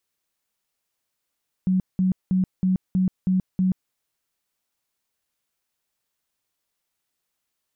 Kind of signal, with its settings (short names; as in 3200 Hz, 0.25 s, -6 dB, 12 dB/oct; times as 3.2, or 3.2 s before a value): tone bursts 186 Hz, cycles 24, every 0.32 s, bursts 7, -17 dBFS